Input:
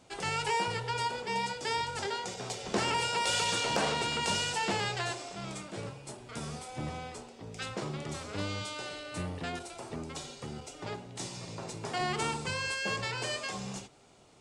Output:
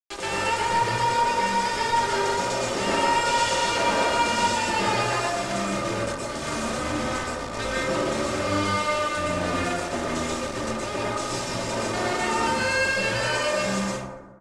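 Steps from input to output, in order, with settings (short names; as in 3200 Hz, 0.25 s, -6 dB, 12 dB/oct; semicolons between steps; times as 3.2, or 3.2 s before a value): in parallel at -1.5 dB: compressor, threshold -40 dBFS, peak gain reduction 14 dB; on the sum: bit-crush 6-bit; comb 3.3 ms, depth 53%; small resonant body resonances 520/1200 Hz, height 7 dB; reverse; upward compressor, threshold -29 dBFS; reverse; hard clip -26 dBFS, distortion -12 dB; LPF 8800 Hz 24 dB/oct; feedback echo 0.116 s, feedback 35%, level -21 dB; plate-style reverb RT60 1.2 s, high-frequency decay 0.3×, pre-delay 0.105 s, DRR -6.5 dB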